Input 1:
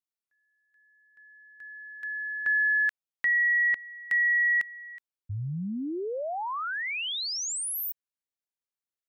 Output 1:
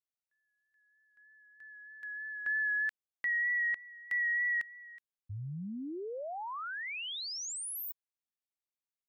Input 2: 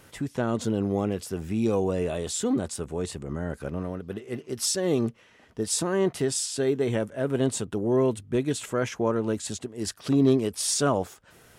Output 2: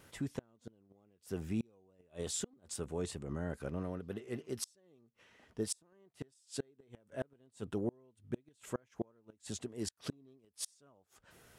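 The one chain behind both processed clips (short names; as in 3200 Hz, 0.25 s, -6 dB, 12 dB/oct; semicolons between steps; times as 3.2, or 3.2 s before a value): vibrato 3.2 Hz 25 cents; flipped gate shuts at -18 dBFS, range -34 dB; gain -7.5 dB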